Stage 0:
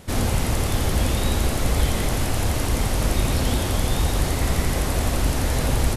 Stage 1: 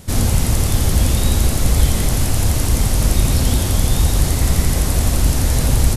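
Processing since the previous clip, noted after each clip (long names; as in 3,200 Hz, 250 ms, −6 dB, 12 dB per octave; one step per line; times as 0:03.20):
bass and treble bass +7 dB, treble +8 dB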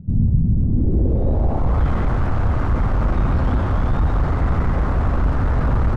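soft clipping −11 dBFS, distortion −14 dB
low-pass filter sweep 180 Hz → 1,300 Hz, 0:00.49–0:01.84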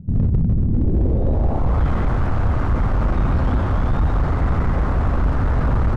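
gain into a clipping stage and back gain 12.5 dB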